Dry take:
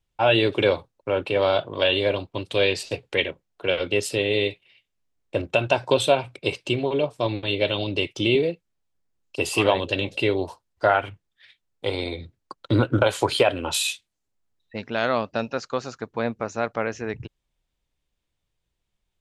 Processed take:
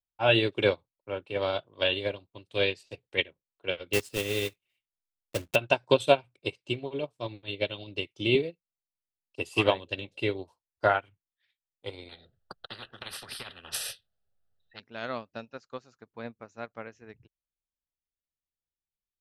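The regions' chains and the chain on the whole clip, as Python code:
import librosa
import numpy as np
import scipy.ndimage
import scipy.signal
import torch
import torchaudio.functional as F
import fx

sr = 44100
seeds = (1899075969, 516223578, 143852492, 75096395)

y = fx.chain(x, sr, fx.block_float(bits=3),
    fx.low_shelf(hz=170.0, db=4.0), at=(3.93, 5.56))
y = fx.chain(y, sr, fx.high_shelf(hz=2000.0, db=-10.5),
    fx.fixed_phaser(hz=1500.0, stages=8),
    fx.spectral_comp(ratio=10.0), at=(12.09, 14.8))
y = fx.dynamic_eq(y, sr, hz=690.0, q=0.79, threshold_db=-34.0, ratio=4.0, max_db=-3)
y = fx.upward_expand(y, sr, threshold_db=-33.0, expansion=2.5)
y = y * 10.0 ** (2.0 / 20.0)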